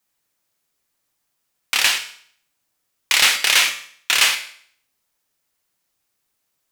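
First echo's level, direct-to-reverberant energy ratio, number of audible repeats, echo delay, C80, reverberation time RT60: no echo, 5.0 dB, no echo, no echo, 13.5 dB, 0.55 s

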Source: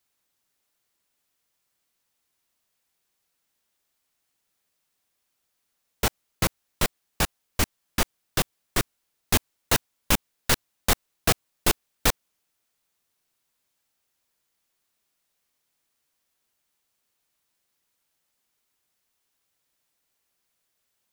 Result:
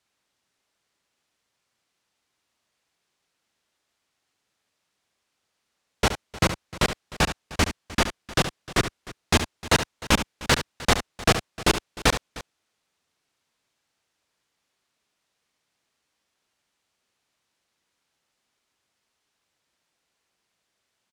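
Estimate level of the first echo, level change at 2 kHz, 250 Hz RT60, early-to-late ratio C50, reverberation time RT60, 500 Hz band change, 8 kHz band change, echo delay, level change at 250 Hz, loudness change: -10.5 dB, +4.5 dB, no reverb, no reverb, no reverb, +4.5 dB, -1.5 dB, 71 ms, +4.5 dB, +2.0 dB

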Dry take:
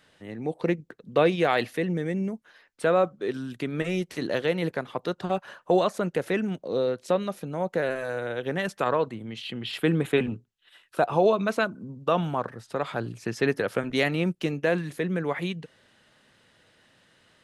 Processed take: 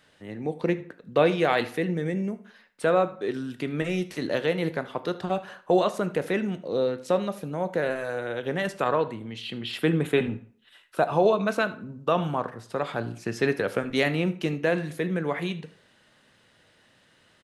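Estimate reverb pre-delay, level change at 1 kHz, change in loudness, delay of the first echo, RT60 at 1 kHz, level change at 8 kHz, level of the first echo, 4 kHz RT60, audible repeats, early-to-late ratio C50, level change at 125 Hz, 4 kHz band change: 16 ms, +0.5 dB, +0.5 dB, 77 ms, 0.50 s, 0.0 dB, -20.0 dB, 0.35 s, 1, 15.0 dB, 0.0 dB, 0.0 dB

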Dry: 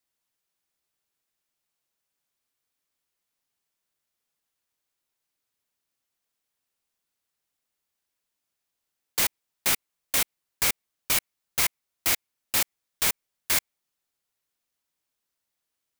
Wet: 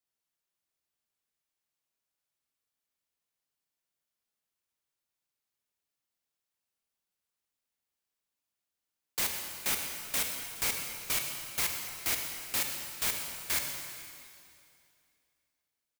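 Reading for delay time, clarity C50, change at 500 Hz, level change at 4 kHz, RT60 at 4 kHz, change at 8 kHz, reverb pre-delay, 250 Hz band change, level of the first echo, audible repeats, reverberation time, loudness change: 121 ms, 3.5 dB, -5.5 dB, -5.5 dB, 2.4 s, -5.5 dB, 20 ms, -5.5 dB, -14.0 dB, 1, 2.4 s, -6.0 dB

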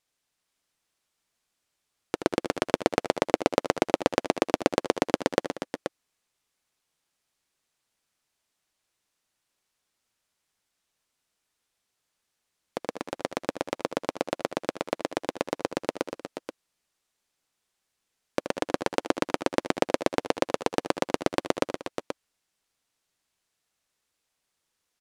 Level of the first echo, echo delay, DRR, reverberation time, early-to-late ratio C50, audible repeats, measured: -8.5 dB, 77 ms, no reverb, no reverb, no reverb, 4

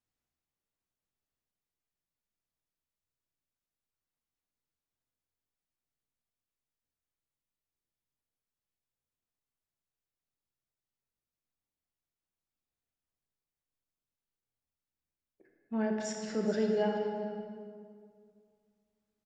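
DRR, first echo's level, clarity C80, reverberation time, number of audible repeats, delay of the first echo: 0.5 dB, -16.0 dB, 3.5 dB, 2.2 s, 1, 427 ms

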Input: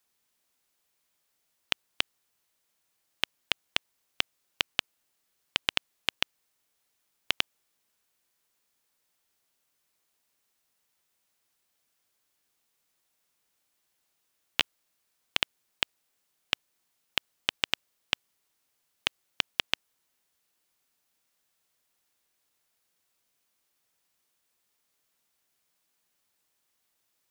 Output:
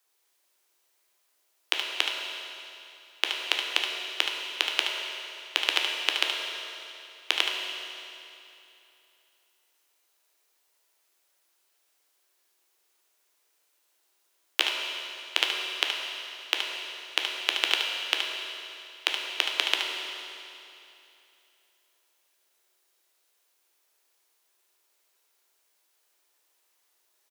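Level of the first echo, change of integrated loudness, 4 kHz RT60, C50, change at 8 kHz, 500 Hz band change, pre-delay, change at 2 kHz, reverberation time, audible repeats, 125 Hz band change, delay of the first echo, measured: -8.0 dB, +3.5 dB, 2.7 s, 0.5 dB, +5.5 dB, +6.0 dB, 11 ms, +5.0 dB, 2.8 s, 1, under -40 dB, 73 ms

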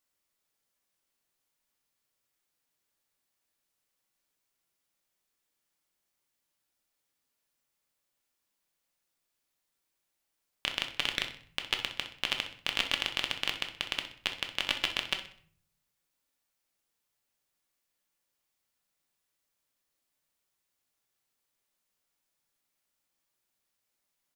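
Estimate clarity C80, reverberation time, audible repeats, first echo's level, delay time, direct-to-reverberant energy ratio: 14.0 dB, 0.55 s, 2, -13.0 dB, 63 ms, 4.0 dB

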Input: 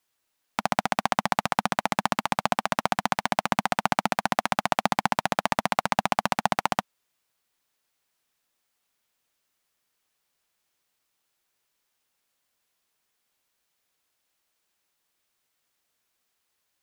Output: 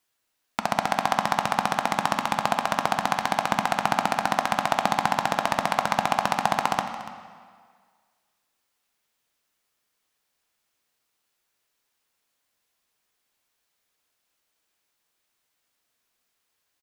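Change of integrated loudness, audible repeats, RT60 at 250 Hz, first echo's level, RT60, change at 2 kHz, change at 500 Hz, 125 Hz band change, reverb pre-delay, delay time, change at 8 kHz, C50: +1.5 dB, 1, 1.6 s, -16.0 dB, 1.8 s, +1.0 dB, +1.5 dB, 0.0 dB, 3 ms, 287 ms, +0.5 dB, 7.5 dB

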